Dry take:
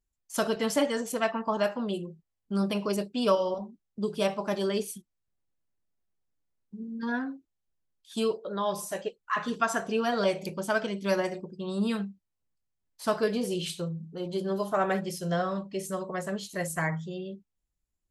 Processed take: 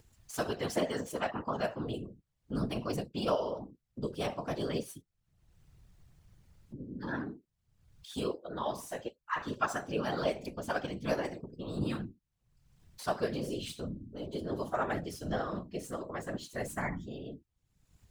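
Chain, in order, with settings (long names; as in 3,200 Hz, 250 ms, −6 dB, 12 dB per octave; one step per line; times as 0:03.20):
running median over 3 samples
upward compression, threshold −34 dBFS
random phases in short frames
level −6 dB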